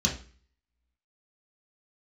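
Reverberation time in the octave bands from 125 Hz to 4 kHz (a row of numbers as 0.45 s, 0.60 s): 0.50 s, 0.50 s, 0.45 s, 0.40 s, 0.45 s, 0.40 s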